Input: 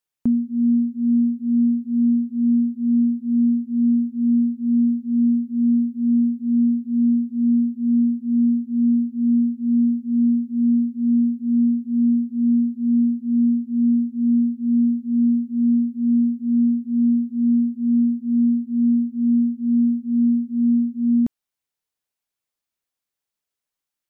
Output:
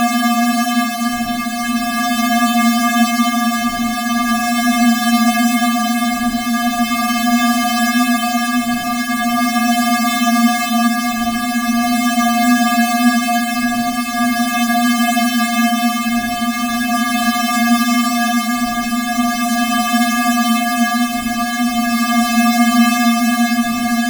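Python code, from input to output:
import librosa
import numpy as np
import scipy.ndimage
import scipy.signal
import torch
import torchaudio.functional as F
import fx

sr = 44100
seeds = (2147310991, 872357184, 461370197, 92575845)

p1 = fx.halfwave_hold(x, sr)
p2 = scipy.signal.sosfilt(scipy.signal.butter(4, 260.0, 'highpass', fs=sr, output='sos'), p1)
p3 = fx.schmitt(p2, sr, flips_db=-37.5)
p4 = p2 + (p3 * 10.0 ** (-10.0 / 20.0))
p5 = fx.paulstretch(p4, sr, seeds[0], factor=5.5, window_s=0.1, from_s=8.89)
y = p5 + fx.echo_diffused(p5, sr, ms=525, feedback_pct=74, wet_db=-4.5, dry=0)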